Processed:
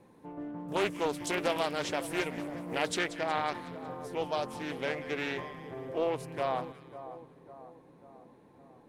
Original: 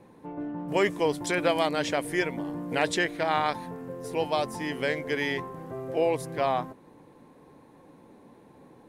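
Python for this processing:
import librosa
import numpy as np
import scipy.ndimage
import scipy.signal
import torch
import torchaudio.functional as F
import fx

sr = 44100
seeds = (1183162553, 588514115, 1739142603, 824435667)

y = fx.high_shelf(x, sr, hz=5700.0, db=fx.steps((0.0, 5.0), (3.06, -3.0)))
y = fx.echo_split(y, sr, split_hz=1300.0, low_ms=545, high_ms=183, feedback_pct=52, wet_db=-13.5)
y = fx.doppler_dist(y, sr, depth_ms=0.35)
y = F.gain(torch.from_numpy(y), -5.5).numpy()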